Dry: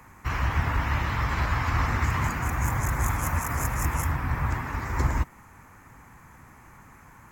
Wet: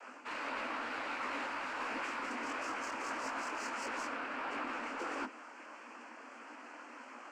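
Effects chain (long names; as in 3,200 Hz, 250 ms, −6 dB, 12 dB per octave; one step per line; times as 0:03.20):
cochlear-implant simulation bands 8
Butterworth high-pass 230 Hz 96 dB per octave
in parallel at +1 dB: soft clipping −34 dBFS, distortion −9 dB
on the sum: high-shelf EQ 4,900 Hz −7 dB
reversed playback
downward compressor 5 to 1, threshold −34 dBFS, peak gain reduction 9 dB
reversed playback
micro pitch shift up and down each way 53 cents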